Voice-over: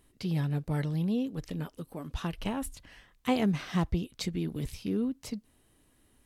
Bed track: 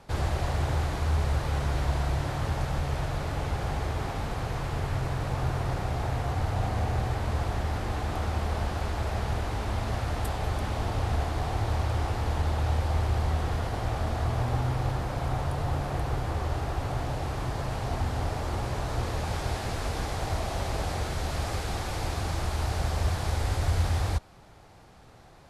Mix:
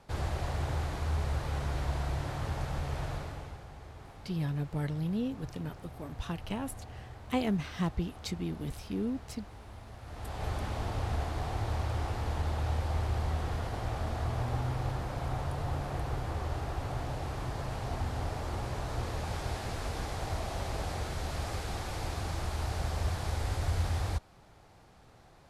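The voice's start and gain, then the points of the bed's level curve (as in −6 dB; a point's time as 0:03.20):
4.05 s, −3.0 dB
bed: 0:03.13 −5.5 dB
0:03.67 −18 dB
0:09.99 −18 dB
0:10.45 −5 dB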